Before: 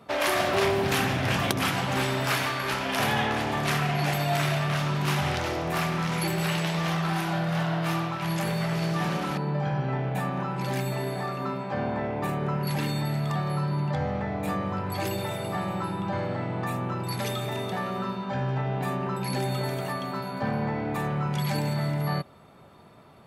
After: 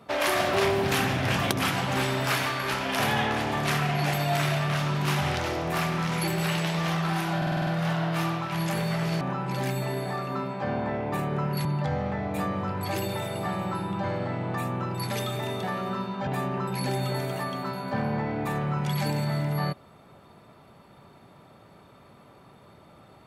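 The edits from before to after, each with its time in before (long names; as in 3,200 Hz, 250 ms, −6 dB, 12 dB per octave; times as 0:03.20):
0:07.37: stutter 0.05 s, 7 plays
0:08.91–0:10.31: remove
0:12.75–0:13.74: remove
0:18.36–0:18.76: remove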